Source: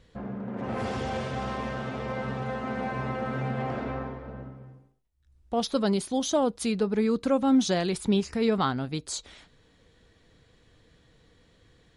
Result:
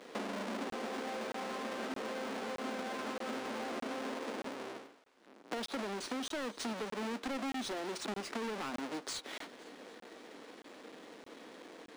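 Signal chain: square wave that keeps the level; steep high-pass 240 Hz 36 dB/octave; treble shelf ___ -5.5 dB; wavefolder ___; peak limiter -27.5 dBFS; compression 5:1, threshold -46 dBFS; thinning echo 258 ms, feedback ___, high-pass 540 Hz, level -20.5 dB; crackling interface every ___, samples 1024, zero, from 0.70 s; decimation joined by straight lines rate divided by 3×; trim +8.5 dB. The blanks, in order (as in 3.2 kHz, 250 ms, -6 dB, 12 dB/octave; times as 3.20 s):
9 kHz, -16.5 dBFS, 58%, 0.62 s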